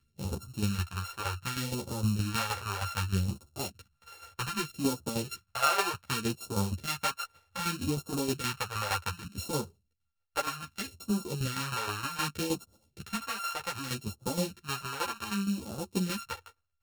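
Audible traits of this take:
a buzz of ramps at a fixed pitch in blocks of 32 samples
phaser sweep stages 2, 0.65 Hz, lowest notch 190–1,900 Hz
tremolo saw down 6.4 Hz, depth 70%
a shimmering, thickened sound

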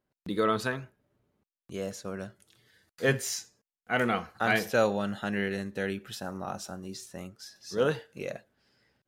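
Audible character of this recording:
background noise floor −96 dBFS
spectral slope −4.5 dB per octave

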